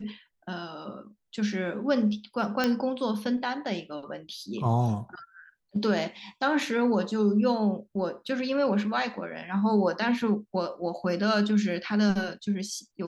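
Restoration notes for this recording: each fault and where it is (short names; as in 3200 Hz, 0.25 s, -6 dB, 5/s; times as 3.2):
2.64 pop -11 dBFS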